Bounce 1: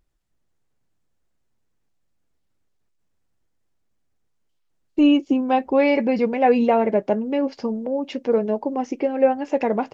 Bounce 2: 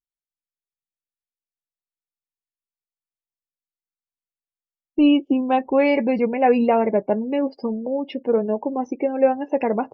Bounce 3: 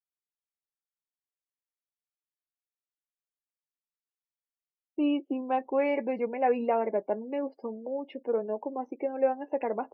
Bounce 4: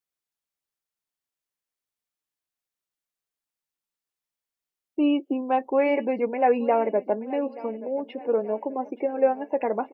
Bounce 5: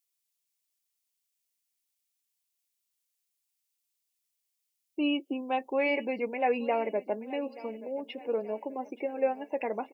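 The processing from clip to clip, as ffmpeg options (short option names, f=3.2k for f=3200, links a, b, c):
-af "afftdn=nr=34:nf=-38"
-filter_complex "[0:a]acrossover=split=270 2800:gain=0.2 1 0.0794[a][b][c];[a][b][c]amix=inputs=3:normalize=0,volume=-8dB"
-af "aecho=1:1:879|1758|2637|3516:0.119|0.0559|0.0263|0.0123,volume=5dB"
-af "aexciter=amount=4:drive=4.3:freq=2.1k,volume=-7dB"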